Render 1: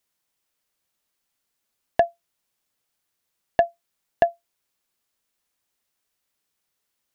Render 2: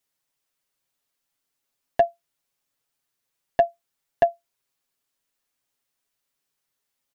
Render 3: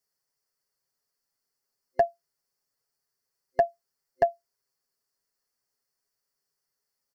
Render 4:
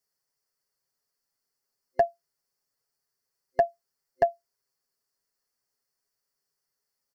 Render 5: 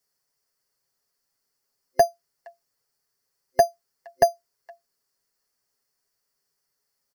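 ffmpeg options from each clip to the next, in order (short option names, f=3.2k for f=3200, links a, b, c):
-af "aecho=1:1:7.3:0.64,volume=-3.5dB"
-af "superequalizer=6b=0.631:7b=1.58:12b=0.398:13b=0.282:14b=1.78,volume=-3.5dB"
-af anull
-filter_complex "[0:a]acrossover=split=760[a][b];[a]acrusher=samples=8:mix=1:aa=0.000001[c];[b]aecho=1:1:467:0.0891[d];[c][d]amix=inputs=2:normalize=0,volume=5dB"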